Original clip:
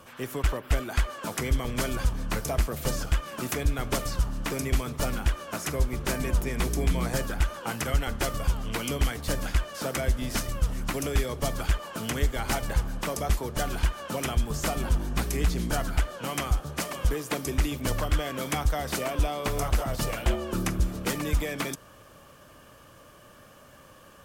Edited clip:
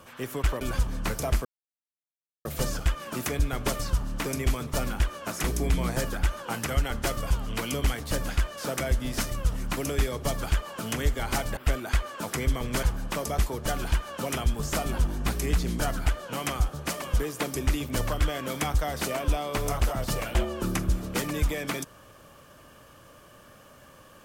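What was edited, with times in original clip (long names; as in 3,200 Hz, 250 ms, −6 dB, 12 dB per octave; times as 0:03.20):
0:00.61–0:01.87: move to 0:12.74
0:02.71: splice in silence 1.00 s
0:05.70–0:06.61: remove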